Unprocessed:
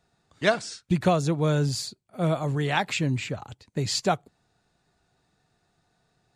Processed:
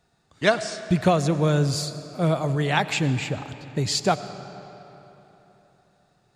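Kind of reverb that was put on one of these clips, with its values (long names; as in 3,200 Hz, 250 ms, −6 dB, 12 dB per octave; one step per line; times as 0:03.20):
comb and all-pass reverb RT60 3.6 s, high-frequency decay 0.7×, pre-delay 55 ms, DRR 12 dB
level +2.5 dB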